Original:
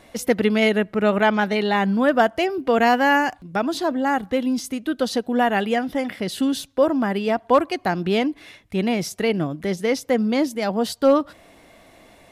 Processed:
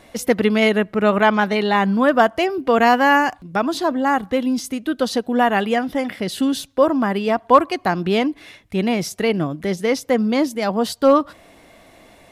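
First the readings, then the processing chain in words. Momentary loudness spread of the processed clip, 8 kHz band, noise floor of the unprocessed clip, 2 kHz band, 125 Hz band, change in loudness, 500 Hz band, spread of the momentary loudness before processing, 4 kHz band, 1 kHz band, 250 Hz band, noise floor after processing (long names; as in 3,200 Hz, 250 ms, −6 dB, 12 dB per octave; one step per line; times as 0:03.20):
8 LU, +2.0 dB, −52 dBFS, +2.5 dB, +2.0 dB, +2.5 dB, +2.0 dB, 7 LU, +2.0 dB, +4.0 dB, +2.0 dB, −50 dBFS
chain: dynamic equaliser 1,100 Hz, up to +6 dB, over −39 dBFS, Q 4.1
level +2 dB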